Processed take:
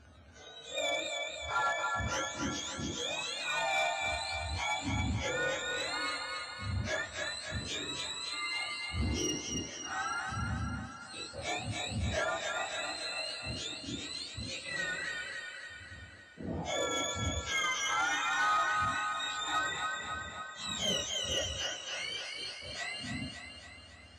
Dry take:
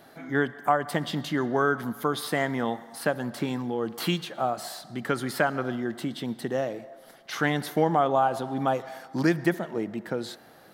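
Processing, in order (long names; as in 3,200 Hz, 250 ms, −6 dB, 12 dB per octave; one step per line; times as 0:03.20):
frequency axis turned over on the octave scale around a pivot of 1,500 Hz
on a send: delay with a high-pass on its return 124 ms, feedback 58%, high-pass 1,400 Hz, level −4 dB
on the sum: change of speed 0.444×
soft clipping −20 dBFS, distortion −18 dB
level −4 dB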